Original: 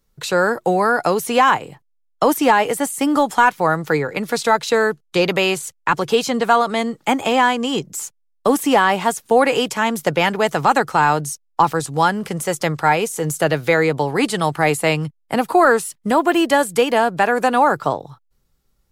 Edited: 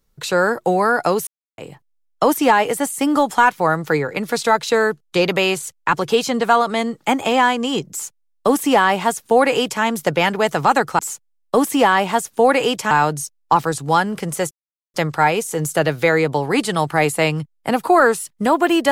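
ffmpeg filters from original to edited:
-filter_complex "[0:a]asplit=6[s0][s1][s2][s3][s4][s5];[s0]atrim=end=1.27,asetpts=PTS-STARTPTS,afade=t=out:st=1.266:d=0.004:c=hsin[s6];[s1]atrim=start=1.27:end=1.58,asetpts=PTS-STARTPTS,volume=0[s7];[s2]atrim=start=1.58:end=10.992,asetpts=PTS-STARTPTS,afade=t=in:d=0.004:c=hsin[s8];[s3]atrim=start=7.908:end=9.832[s9];[s4]atrim=start=10.988:end=12.59,asetpts=PTS-STARTPTS,afade=t=out:st=1.598:d=0.004:c=hsin,apad=pad_dur=0.43[s10];[s5]atrim=start=12.59,asetpts=PTS-STARTPTS,afade=t=in:d=0.004:c=hsin[s11];[s6][s7][s8]concat=n=3:v=0:a=1[s12];[s12][s9]acrossfade=d=0.004:c1=hsin:c2=hsin[s13];[s10][s11]concat=n=2:v=0:a=1[s14];[s13][s14]acrossfade=d=0.004:c1=hsin:c2=hsin"

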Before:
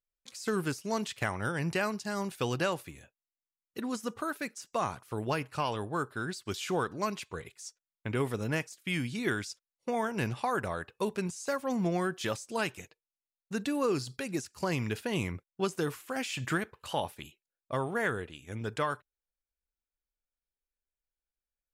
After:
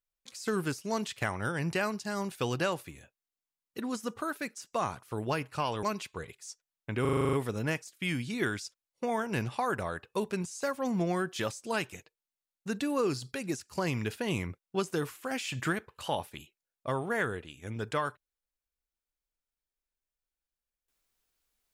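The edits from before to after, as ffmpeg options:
-filter_complex "[0:a]asplit=10[s0][s1][s2][s3][s4][s5][s6][s7][s8][s9];[s0]atrim=end=5.832[s10];[s1]atrim=start=6.998:end=8.222[s11];[s2]atrim=start=8.178:end=8.222[s12];[s3]atrim=start=8.178:end=8.222[s13];[s4]atrim=start=8.178:end=8.222[s14];[s5]atrim=start=8.178:end=8.222[s15];[s6]atrim=start=8.178:end=8.222[s16];[s7]atrim=start=8.178:end=8.222[s17];[s8]atrim=start=8.178:end=8.222[s18];[s9]atrim=start=8.178[s19];[s10][s11]acrossfade=d=0.004:c1=hsin:c2=hsin[s20];[s20][s12]acrossfade=d=0.004:c1=hsin:c2=hsin[s21];[s21][s13]acrossfade=d=0.004:c1=hsin:c2=hsin[s22];[s22][s14]acrossfade=d=0.004:c1=hsin:c2=hsin[s23];[s23][s15]acrossfade=d=0.004:c1=hsin:c2=hsin[s24];[s24][s16]acrossfade=d=0.004:c1=hsin:c2=hsin[s25];[s25][s17]acrossfade=d=0.004:c1=hsin:c2=hsin[s26];[s26][s18]acrossfade=d=0.004:c1=hsin:c2=hsin[s27];[s27][s19]acrossfade=d=0.004:c1=hsin:c2=hsin"

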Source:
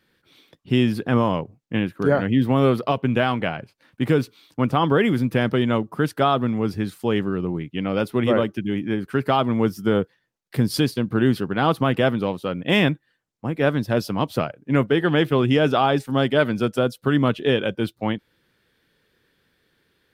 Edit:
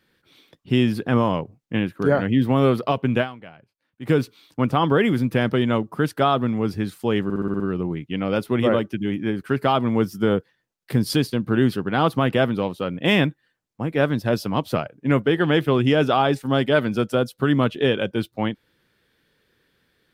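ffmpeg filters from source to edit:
-filter_complex "[0:a]asplit=9[s0][s1][s2][s3][s4][s5][s6][s7][s8];[s0]atrim=end=3.6,asetpts=PTS-STARTPTS,afade=t=out:st=3.21:d=0.39:c=exp:silence=0.133352[s9];[s1]atrim=start=3.6:end=3.71,asetpts=PTS-STARTPTS,volume=0.133[s10];[s2]atrim=start=3.71:end=7.302,asetpts=PTS-STARTPTS,afade=t=in:d=0.39:c=exp:silence=0.133352[s11];[s3]atrim=start=7.238:end=7.302[s12];[s4]atrim=start=7.238:end=7.302[s13];[s5]atrim=start=7.238:end=7.302[s14];[s6]atrim=start=7.238:end=7.302[s15];[s7]atrim=start=7.238:end=7.302[s16];[s8]atrim=start=7.238[s17];[s9][s10][s11]concat=n=3:v=0:a=1[s18];[s18][s12]acrossfade=d=0.004:c1=hsin:c2=hsin[s19];[s19][s13]acrossfade=d=0.004:c1=hsin:c2=hsin[s20];[s20][s14]acrossfade=d=0.004:c1=hsin:c2=hsin[s21];[s21][s15]acrossfade=d=0.004:c1=hsin:c2=hsin[s22];[s22][s16]acrossfade=d=0.004:c1=hsin:c2=hsin[s23];[s23][s17]acrossfade=d=0.004:c1=hsin:c2=hsin"

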